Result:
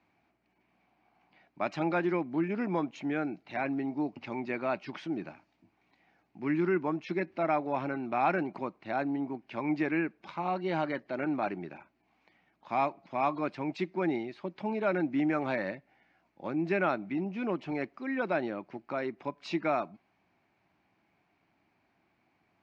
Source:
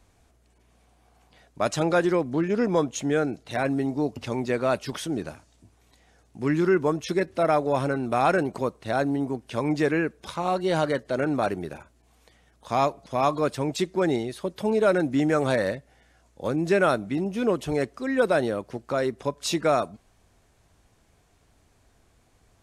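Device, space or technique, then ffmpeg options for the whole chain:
kitchen radio: -af "highpass=180,equalizer=f=180:t=q:w=4:g=5,equalizer=f=320:t=q:w=4:g=5,equalizer=f=470:t=q:w=4:g=-9,equalizer=f=840:t=q:w=4:g=5,equalizer=f=2.3k:t=q:w=4:g=8,equalizer=f=3.5k:t=q:w=4:g=-7,lowpass=f=4.1k:w=0.5412,lowpass=f=4.1k:w=1.3066,volume=-7.5dB"

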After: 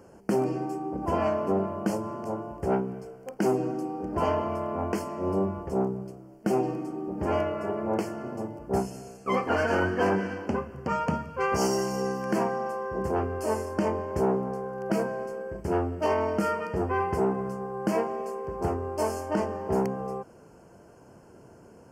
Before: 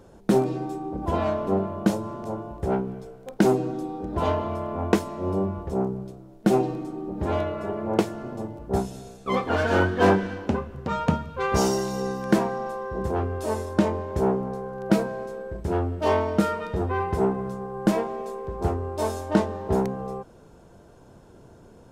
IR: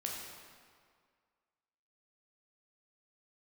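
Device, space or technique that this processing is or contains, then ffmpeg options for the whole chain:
PA system with an anti-feedback notch: -af "highpass=f=140:p=1,asuperstop=centerf=3700:order=8:qfactor=2.9,alimiter=limit=-15.5dB:level=0:latency=1:release=79"

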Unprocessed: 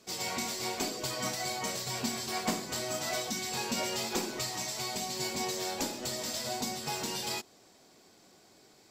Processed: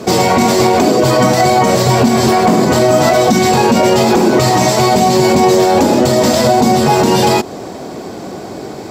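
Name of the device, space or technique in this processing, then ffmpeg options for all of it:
mastering chain: -af "highpass=50,equalizer=f=800:t=o:w=2.1:g=2.5,acompressor=threshold=-36dB:ratio=2.5,asoftclip=type=tanh:threshold=-25.5dB,tiltshelf=f=1.3k:g=8,alimiter=level_in=30dB:limit=-1dB:release=50:level=0:latency=1,volume=-1dB"

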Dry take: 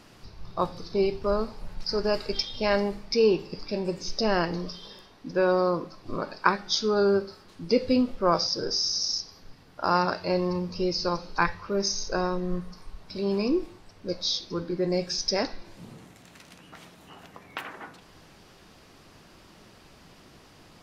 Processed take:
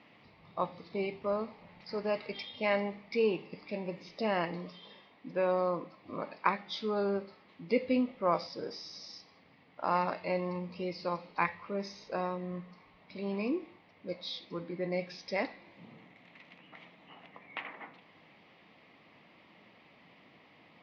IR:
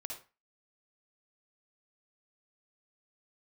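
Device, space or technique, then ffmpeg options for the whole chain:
kitchen radio: -af "highpass=190,equalizer=f=380:t=q:w=4:g=-7,equalizer=f=1.5k:t=q:w=4:g=-10,equalizer=f=2.1k:t=q:w=4:g=9,lowpass=f=3.4k:w=0.5412,lowpass=f=3.4k:w=1.3066,volume=-4.5dB"

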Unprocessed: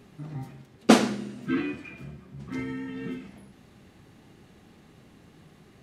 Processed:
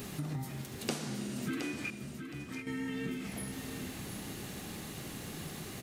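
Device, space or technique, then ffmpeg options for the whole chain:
serial compression, leveller first: -filter_complex "[0:a]aemphasis=mode=production:type=75kf,acompressor=threshold=-33dB:ratio=2,acompressor=threshold=-44dB:ratio=6,asettb=1/sr,asplit=3[a][b][c];[a]atrim=end=1.904[d];[b]atrim=start=1.9:end=2.67,asetpts=PTS-STARTPTS,afade=t=in:d=0.004:c=qsin,afade=t=out:st=0.766:d=0.004:c=qsin,agate=range=-33dB:threshold=-39dB:ratio=3:detection=peak[e];[c]atrim=start=2.666[f];[d][e]acrossfade=d=0.004:c1=hsin:c2=qsin[g];[g][f]acrossfade=d=0.004:c1=qsin:c2=hsin,aecho=1:1:718|1436|2154:0.398|0.0876|0.0193,volume=9dB"

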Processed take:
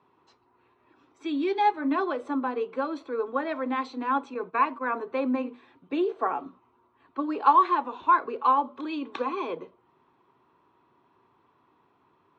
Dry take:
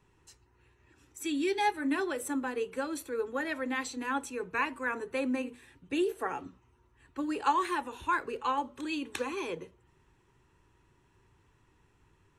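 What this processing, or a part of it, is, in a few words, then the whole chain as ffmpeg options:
kitchen radio: -filter_complex "[0:a]asettb=1/sr,asplit=3[a][b][c];[a]atrim=end=4.344[d];[b]atrim=start=4.34:end=4.92,asetpts=PTS-STARTPTS,afade=t=in:d=0.004:c=qsin,afade=t=out:st=0.576:d=0.004:c=qsin,agate=range=-8dB:threshold=-41dB:ratio=16:detection=peak[e];[c]atrim=start=4.916[f];[d][e]acrossfade=d=0.004:c1=hsin:c2=qsin[g];[g][f]acrossfade=d=0.004:c1=qsin:c2=hsin,highpass=230,equalizer=f=250:t=q:w=4:g=4,equalizer=f=680:t=q:w=4:g=8,equalizer=f=1.1k:t=q:w=4:g=9,equalizer=f=1.8k:t=q:w=4:g=-8,equalizer=f=2.8k:t=q:w=4:g=-7,lowpass=f=3.8k:w=0.5412,lowpass=f=3.8k:w=1.3066,volume=3dB"

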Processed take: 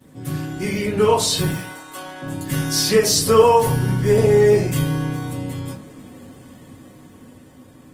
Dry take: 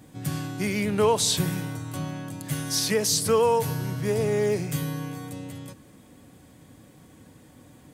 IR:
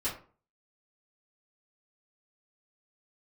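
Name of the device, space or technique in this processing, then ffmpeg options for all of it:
far-field microphone of a smart speaker: -filter_complex "[0:a]asettb=1/sr,asplit=3[a][b][c];[a]atrim=end=1.524[d];[b]atrim=start=1.52:end=2.22,asetpts=PTS-STARTPTS,afade=t=in:d=0.004:c=qsin,afade=t=out:st=0.696:d=0.004:c=qsin,highpass=610[e];[c]atrim=start=2.216[f];[d][e]acrossfade=d=0.004:c1=hsin:c2=qsin[g];[g][f]acrossfade=d=0.004:c1=qsin:c2=hsin[h];[1:a]atrim=start_sample=2205[i];[h][i]afir=irnorm=-1:irlink=0,highpass=110,dynaudnorm=f=260:g=13:m=11.5dB,volume=-1dB" -ar 48000 -c:a libopus -b:a 20k

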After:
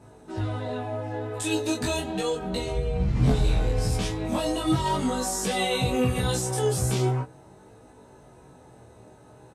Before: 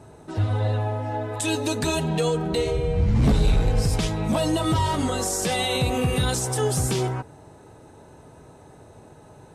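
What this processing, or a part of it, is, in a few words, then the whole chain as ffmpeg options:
double-tracked vocal: -filter_complex "[0:a]asplit=2[a][b];[b]adelay=16,volume=-2dB[c];[a][c]amix=inputs=2:normalize=0,flanger=delay=20:depth=6.2:speed=0.38,volume=-2dB"

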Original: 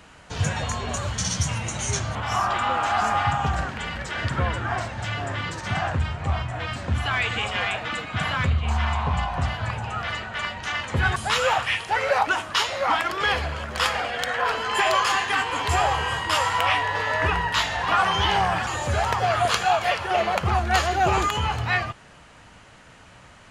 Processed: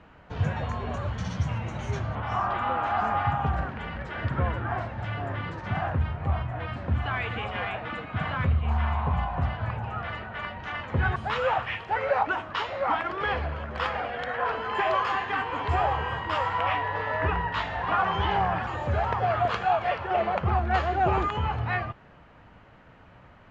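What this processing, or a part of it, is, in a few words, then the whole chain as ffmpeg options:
phone in a pocket: -af "lowpass=3.2k,highshelf=f=2k:g=-10.5,volume=-1.5dB"

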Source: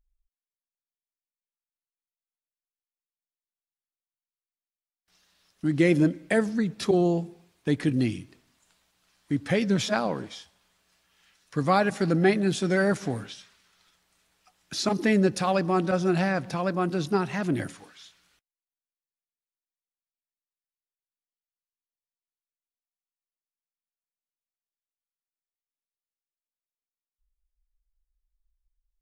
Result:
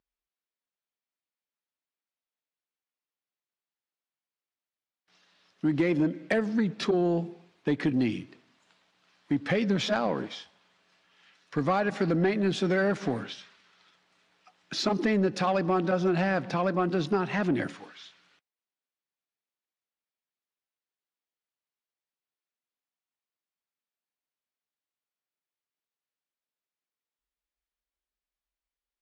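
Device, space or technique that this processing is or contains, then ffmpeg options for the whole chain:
AM radio: -af "highpass=170,lowpass=4k,acompressor=threshold=-24dB:ratio=6,asoftclip=type=tanh:threshold=-20dB,volume=4dB"

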